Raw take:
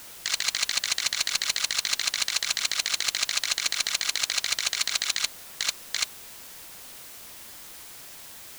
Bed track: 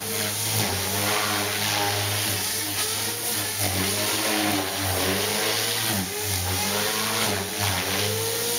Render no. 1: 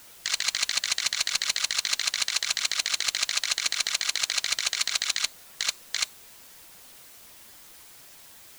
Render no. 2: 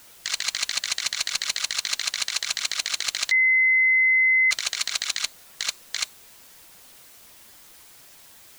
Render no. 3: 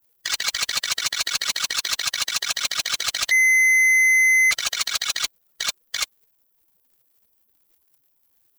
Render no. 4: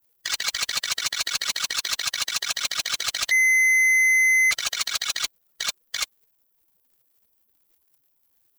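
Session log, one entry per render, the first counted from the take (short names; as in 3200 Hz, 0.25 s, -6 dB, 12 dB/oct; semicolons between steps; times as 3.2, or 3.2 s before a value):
denoiser 6 dB, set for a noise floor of -44 dBFS
3.31–4.51 bleep 2050 Hz -15.5 dBFS
per-bin expansion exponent 2; sample leveller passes 3
gain -2 dB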